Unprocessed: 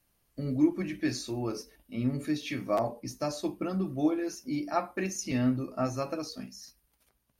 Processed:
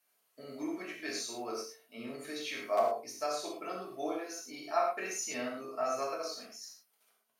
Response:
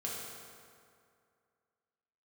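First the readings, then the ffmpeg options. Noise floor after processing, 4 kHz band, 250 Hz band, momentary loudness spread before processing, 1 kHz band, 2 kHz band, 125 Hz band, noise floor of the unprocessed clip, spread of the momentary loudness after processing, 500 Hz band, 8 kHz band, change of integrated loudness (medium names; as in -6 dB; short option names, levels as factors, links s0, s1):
-76 dBFS, 0.0 dB, -13.5 dB, 12 LU, +1.0 dB, -0.5 dB, under -20 dB, -74 dBFS, 14 LU, -1.5 dB, +0.5 dB, -5.0 dB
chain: -filter_complex "[0:a]highpass=580[s0];[1:a]atrim=start_sample=2205,afade=t=out:st=0.17:d=0.01,atrim=end_sample=7938,asetrate=42336,aresample=44100[s1];[s0][s1]afir=irnorm=-1:irlink=0"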